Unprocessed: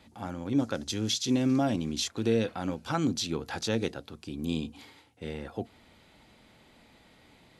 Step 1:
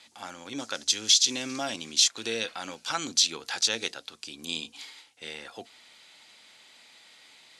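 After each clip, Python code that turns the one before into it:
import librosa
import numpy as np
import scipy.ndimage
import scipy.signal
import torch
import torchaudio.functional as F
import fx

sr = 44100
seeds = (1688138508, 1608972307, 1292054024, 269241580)

y = fx.weighting(x, sr, curve='ITU-R 468')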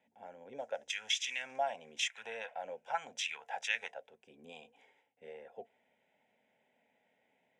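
y = fx.auto_wah(x, sr, base_hz=280.0, top_hz=2200.0, q=2.4, full_db=-22.0, direction='up')
y = fx.fixed_phaser(y, sr, hz=1200.0, stages=6)
y = y * 10.0 ** (4.5 / 20.0)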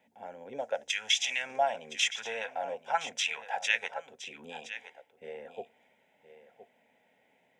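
y = x + 10.0 ** (-13.0 / 20.0) * np.pad(x, (int(1017 * sr / 1000.0), 0))[:len(x)]
y = y * 10.0 ** (6.5 / 20.0)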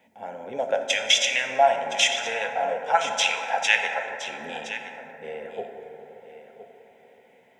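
y = fx.rev_plate(x, sr, seeds[0], rt60_s=4.0, hf_ratio=0.25, predelay_ms=0, drr_db=3.5)
y = y * 10.0 ** (7.5 / 20.0)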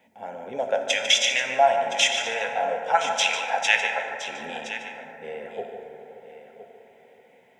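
y = x + 10.0 ** (-10.5 / 20.0) * np.pad(x, (int(148 * sr / 1000.0), 0))[:len(x)]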